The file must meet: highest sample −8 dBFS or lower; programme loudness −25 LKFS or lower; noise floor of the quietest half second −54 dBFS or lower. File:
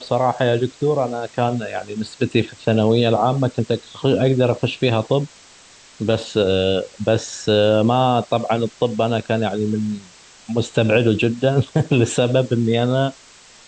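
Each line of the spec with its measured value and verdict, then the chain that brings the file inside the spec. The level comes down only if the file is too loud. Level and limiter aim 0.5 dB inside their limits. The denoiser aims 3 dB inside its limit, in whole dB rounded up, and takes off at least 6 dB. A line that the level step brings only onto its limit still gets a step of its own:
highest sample −4.5 dBFS: out of spec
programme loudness −19.5 LKFS: out of spec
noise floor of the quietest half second −47 dBFS: out of spec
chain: broadband denoise 6 dB, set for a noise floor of −47 dBFS
level −6 dB

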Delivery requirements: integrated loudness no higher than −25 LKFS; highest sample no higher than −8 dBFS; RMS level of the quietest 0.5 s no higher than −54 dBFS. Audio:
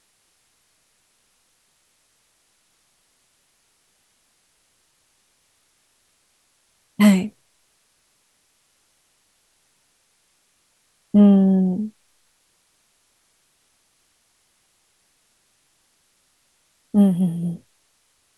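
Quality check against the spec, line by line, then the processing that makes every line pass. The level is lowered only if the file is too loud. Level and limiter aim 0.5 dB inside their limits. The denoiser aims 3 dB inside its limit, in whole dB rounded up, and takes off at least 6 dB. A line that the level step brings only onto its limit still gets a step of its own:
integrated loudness −18.5 LKFS: out of spec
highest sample −4.5 dBFS: out of spec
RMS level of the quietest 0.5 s −65 dBFS: in spec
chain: level −7 dB

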